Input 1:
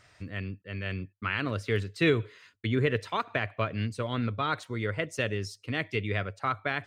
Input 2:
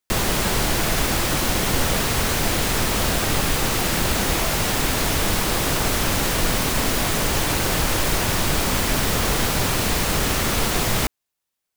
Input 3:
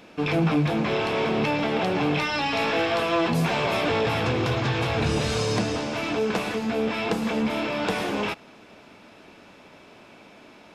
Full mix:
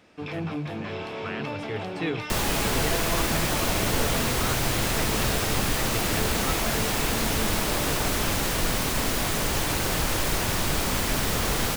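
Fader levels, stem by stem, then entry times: -6.0 dB, -4.5 dB, -9.5 dB; 0.00 s, 2.20 s, 0.00 s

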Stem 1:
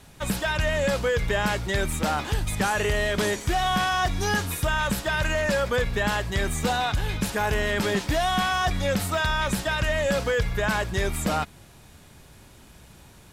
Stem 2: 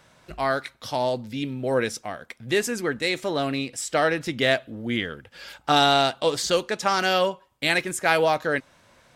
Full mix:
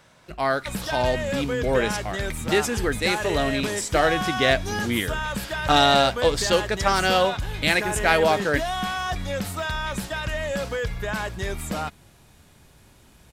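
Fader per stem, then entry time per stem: -3.5 dB, +1.0 dB; 0.45 s, 0.00 s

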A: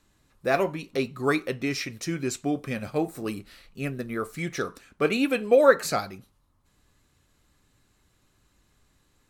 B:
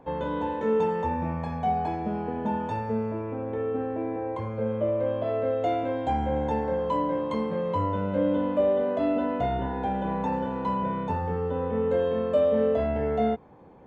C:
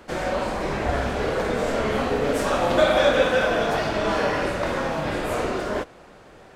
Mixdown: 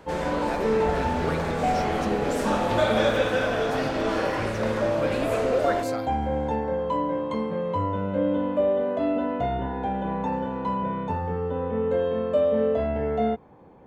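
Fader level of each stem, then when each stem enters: -10.0 dB, +0.5 dB, -4.5 dB; 0.00 s, 0.00 s, 0.00 s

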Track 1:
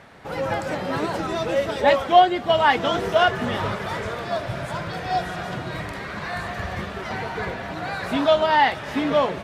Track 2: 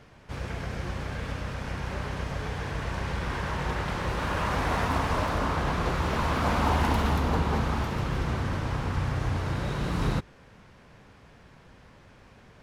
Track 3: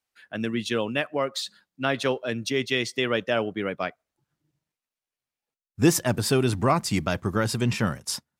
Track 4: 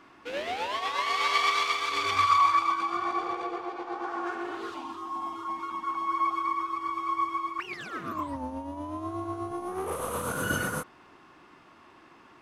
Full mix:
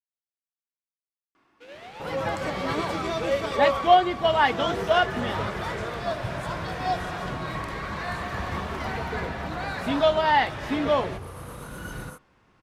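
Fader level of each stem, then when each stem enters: -3.0 dB, -11.5 dB, mute, -11.0 dB; 1.75 s, 1.90 s, mute, 1.35 s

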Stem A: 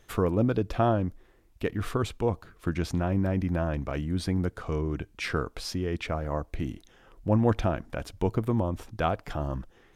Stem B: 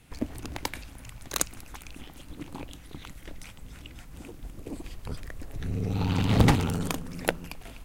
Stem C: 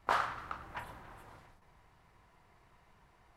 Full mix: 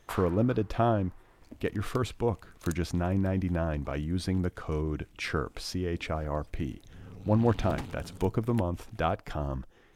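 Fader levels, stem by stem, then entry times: -1.5 dB, -17.0 dB, -9.0 dB; 0.00 s, 1.30 s, 0.00 s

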